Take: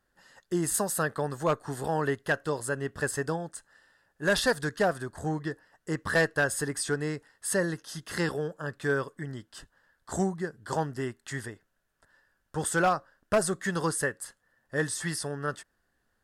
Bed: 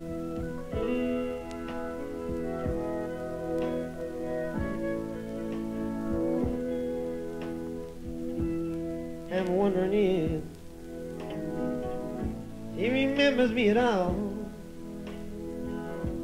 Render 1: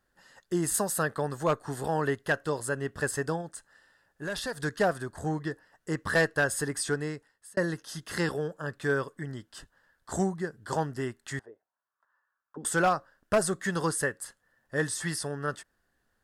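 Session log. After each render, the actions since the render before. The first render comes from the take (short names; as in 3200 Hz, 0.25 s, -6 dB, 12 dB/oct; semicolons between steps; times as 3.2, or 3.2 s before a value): 3.41–4.63 compressor 2.5:1, threshold -35 dBFS; 6.93–7.57 fade out; 11.39–12.65 auto-wah 250–1200 Hz, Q 4.4, down, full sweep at -31 dBFS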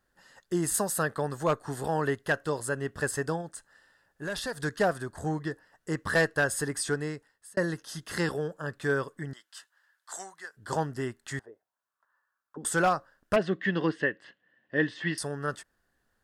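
9.33–10.57 HPF 1200 Hz; 13.36–15.18 speaker cabinet 150–3700 Hz, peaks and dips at 190 Hz +4 dB, 310 Hz +7 dB, 880 Hz -5 dB, 1300 Hz -8 dB, 1900 Hz +5 dB, 2900 Hz +9 dB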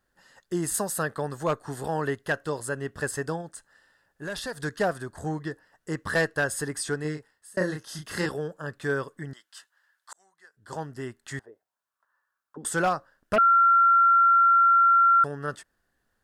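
7.01–8.26 doubler 33 ms -4 dB; 10.13–11.36 fade in linear; 13.38–15.24 bleep 1370 Hz -15 dBFS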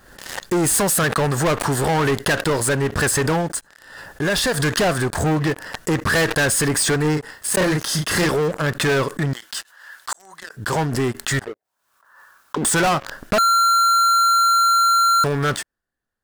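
sample leveller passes 5; backwards sustainer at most 67 dB/s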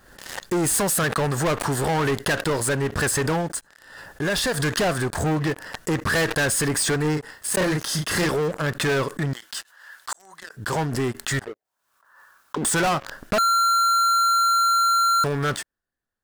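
gain -3.5 dB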